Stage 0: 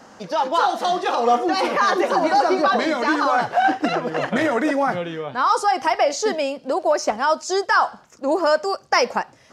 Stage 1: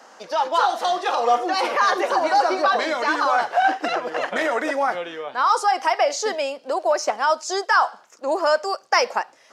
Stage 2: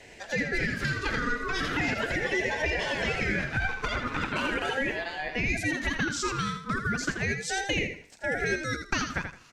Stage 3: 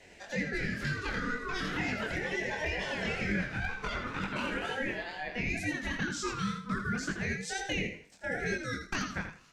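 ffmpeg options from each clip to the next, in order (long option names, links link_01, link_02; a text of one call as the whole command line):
ffmpeg -i in.wav -af "highpass=470" out.wav
ffmpeg -i in.wav -filter_complex "[0:a]acompressor=threshold=-24dB:ratio=4,asplit=2[link_01][link_02];[link_02]aecho=0:1:82|164|246:0.422|0.101|0.0243[link_03];[link_01][link_03]amix=inputs=2:normalize=0,aeval=exprs='val(0)*sin(2*PI*980*n/s+980*0.25/0.38*sin(2*PI*0.38*n/s))':channel_layout=same" out.wav
ffmpeg -i in.wav -af "flanger=delay=20:depth=6.5:speed=2.1,aeval=exprs='0.112*(abs(mod(val(0)/0.112+3,4)-2)-1)':channel_layout=same,equalizer=frequency=190:width=4.5:gain=7,volume=-2.5dB" out.wav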